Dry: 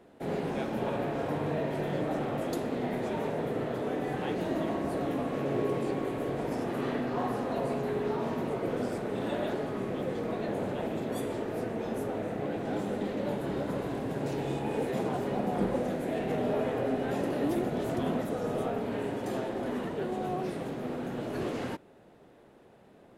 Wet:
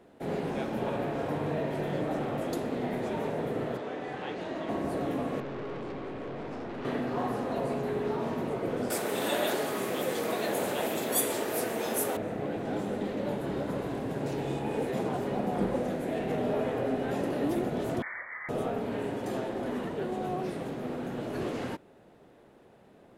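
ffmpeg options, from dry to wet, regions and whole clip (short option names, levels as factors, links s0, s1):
-filter_complex "[0:a]asettb=1/sr,asplit=3[s0][s1][s2];[s0]atrim=end=3.774[s3];[s1]atrim=start=3.77:end=4.69,asetpts=PTS-STARTPTS,afade=t=in:d=0.004:c=qsin,afade=t=out:st=0.916:d=0.004:c=qsin,lowpass=5800,lowshelf=f=420:g=-9.5[s4];[s2]atrim=start=4.686[s5];[s3][s4]acrossfade=d=0.004:c1=hsin:c2=qsin[s6];[s6][s5]acrossfade=d=0.004:c1=qsin:c2=hsin,asettb=1/sr,asplit=3[s7][s8][s9];[s7]atrim=end=5.404[s10];[s8]atrim=start=5.4:end=6.85,asetpts=PTS-STARTPTS,afade=t=in:d=0.004:c=qsin,afade=t=out:st=1.446:d=0.004:c=qsin,lowpass=4600,aeval=exprs='(tanh(56.2*val(0)+0.4)-tanh(0.4))/56.2':c=same[s11];[s9]atrim=start=6.846[s12];[s10][s11]acrossfade=d=0.004:c1=hsin:c2=qsin[s13];[s13][s12]acrossfade=d=0.004:c1=qsin:c2=hsin,asettb=1/sr,asplit=3[s14][s15][s16];[s14]atrim=end=8.904[s17];[s15]atrim=start=8.9:end=12.17,asetpts=PTS-STARTPTS,afade=t=in:d=0.004:c=qsin,afade=t=out:st=3.266:d=0.004:c=qsin,aemphasis=mode=production:type=riaa,acontrast=36[s18];[s16]atrim=start=12.166[s19];[s17][s18]acrossfade=d=0.004:c1=hsin:c2=qsin[s20];[s20][s19]acrossfade=d=0.004:c1=qsin:c2=hsin,asettb=1/sr,asplit=3[s21][s22][s23];[s21]atrim=end=18.024[s24];[s22]atrim=start=18.02:end=18.49,asetpts=PTS-STARTPTS,afade=t=in:d=0.004:c=qsin,afade=t=out:st=0.466:d=0.004:c=qsin,highpass=740,lowpass=f=2100:t=q:w=0.5098,lowpass=f=2100:t=q:w=0.6013,lowpass=f=2100:t=q:w=0.9,lowpass=f=2100:t=q:w=2.563,afreqshift=-2500[s25];[s23]atrim=start=18.486[s26];[s24][s25]acrossfade=d=0.004:c1=hsin:c2=qsin[s27];[s27][s26]acrossfade=d=0.004:c1=qsin:c2=hsin"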